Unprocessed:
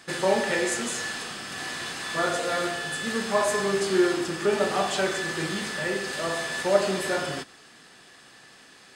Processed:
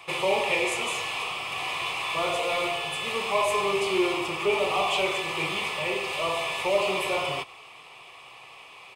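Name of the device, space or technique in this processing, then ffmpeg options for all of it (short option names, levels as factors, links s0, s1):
one-band saturation: -filter_complex "[0:a]acrossover=split=460|2200[s0][s1][s2];[s1]asoftclip=type=tanh:threshold=0.02[s3];[s0][s3][s2]amix=inputs=3:normalize=0,firequalizer=gain_entry='entry(130,0);entry(220,-14);entry(400,1);entry(1100,13);entry(1600,-15);entry(2300,14);entry(4300,-5);entry(6900,-7);entry(13000,1)':delay=0.05:min_phase=1"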